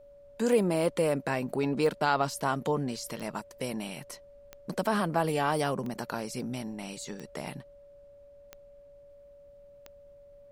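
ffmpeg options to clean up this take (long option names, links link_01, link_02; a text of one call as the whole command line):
ffmpeg -i in.wav -af "adeclick=threshold=4,bandreject=frequency=570:width=30,agate=range=-21dB:threshold=-46dB" out.wav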